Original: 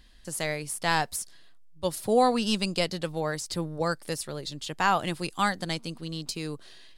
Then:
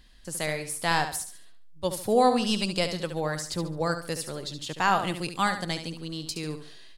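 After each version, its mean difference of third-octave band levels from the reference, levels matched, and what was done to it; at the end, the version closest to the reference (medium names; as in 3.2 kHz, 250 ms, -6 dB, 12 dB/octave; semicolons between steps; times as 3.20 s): 3.0 dB: feedback delay 71 ms, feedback 33%, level -9 dB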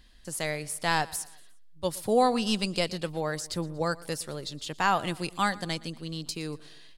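1.5 dB: feedback delay 118 ms, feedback 47%, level -21 dB; trim -1 dB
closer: second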